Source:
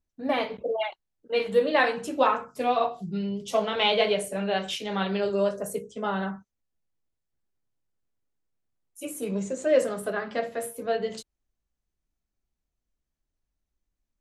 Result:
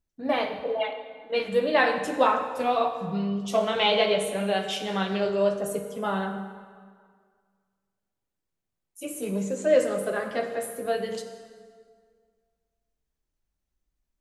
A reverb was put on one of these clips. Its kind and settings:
dense smooth reverb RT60 1.9 s, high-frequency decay 0.75×, DRR 6.5 dB

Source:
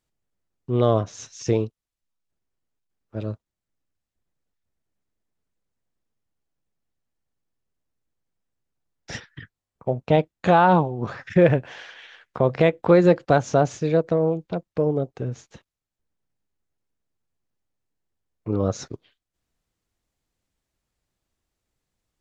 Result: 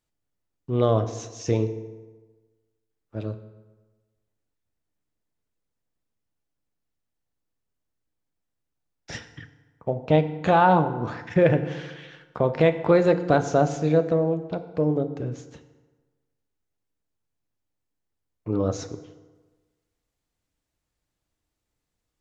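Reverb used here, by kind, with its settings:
feedback delay network reverb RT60 1.3 s, low-frequency decay 0.95×, high-frequency decay 0.65×, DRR 9 dB
level −2 dB

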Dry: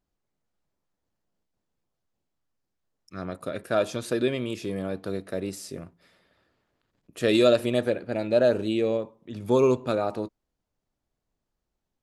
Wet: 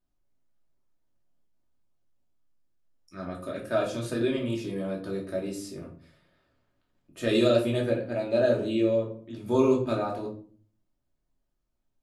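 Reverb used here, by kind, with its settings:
rectangular room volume 350 cubic metres, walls furnished, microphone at 2.7 metres
level −7 dB

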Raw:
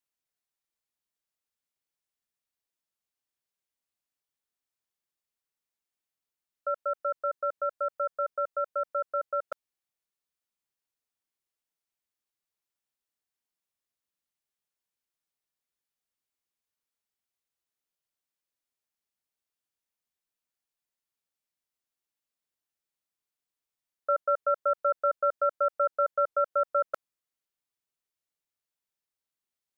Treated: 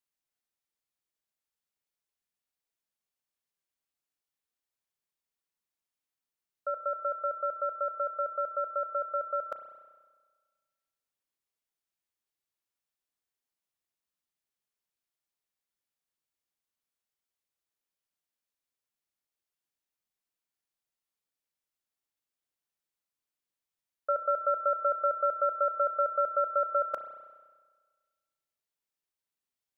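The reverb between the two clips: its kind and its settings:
spring reverb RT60 1.5 s, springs 32 ms, chirp 30 ms, DRR 8.5 dB
level −2 dB

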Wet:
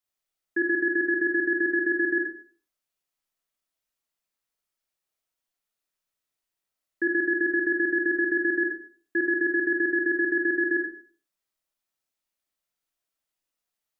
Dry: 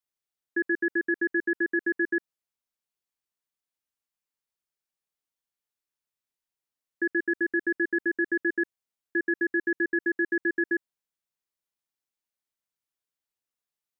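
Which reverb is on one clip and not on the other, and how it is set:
comb and all-pass reverb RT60 0.45 s, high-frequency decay 0.65×, pre-delay 0 ms, DRR −1.5 dB
level +1 dB

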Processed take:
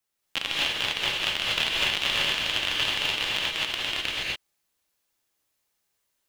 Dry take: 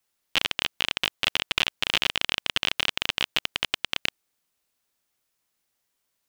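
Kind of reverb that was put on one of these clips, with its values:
reverb whose tail is shaped and stops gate 280 ms rising, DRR −5.5 dB
level −5.5 dB

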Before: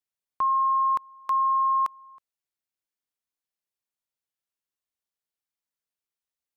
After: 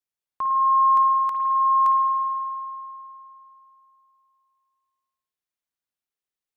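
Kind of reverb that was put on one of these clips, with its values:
spring reverb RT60 2.9 s, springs 51 ms, chirp 25 ms, DRR 1 dB
level −2 dB

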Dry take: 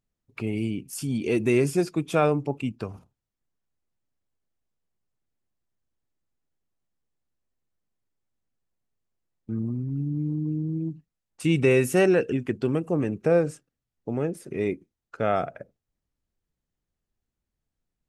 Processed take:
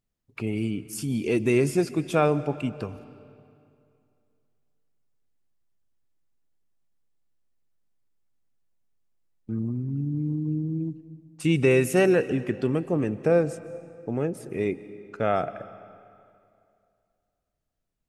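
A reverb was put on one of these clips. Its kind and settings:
comb and all-pass reverb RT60 2.5 s, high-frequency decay 0.8×, pre-delay 105 ms, DRR 15.5 dB

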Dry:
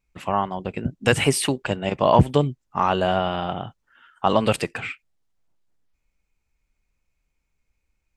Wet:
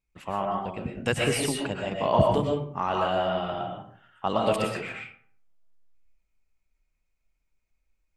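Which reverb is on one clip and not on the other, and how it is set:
comb and all-pass reverb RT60 0.57 s, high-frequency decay 0.55×, pre-delay 80 ms, DRR −0.5 dB
level −8 dB

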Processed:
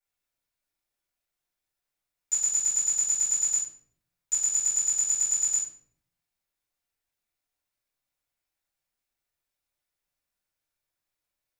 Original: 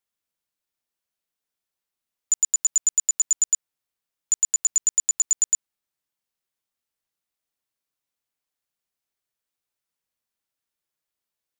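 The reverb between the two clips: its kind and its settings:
rectangular room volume 81 cubic metres, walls mixed, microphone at 4.3 metres
level −14 dB

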